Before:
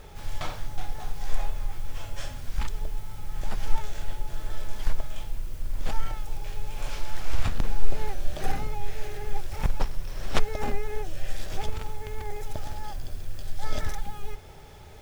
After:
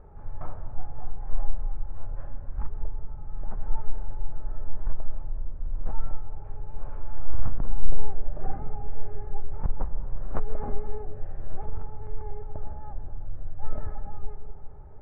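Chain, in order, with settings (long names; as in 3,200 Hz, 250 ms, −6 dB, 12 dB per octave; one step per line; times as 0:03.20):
low-pass filter 1,300 Hz 24 dB per octave
low-shelf EQ 160 Hz +3.5 dB
on a send: convolution reverb RT60 1.7 s, pre-delay 127 ms, DRR 11 dB
on the sum: level −5.5 dB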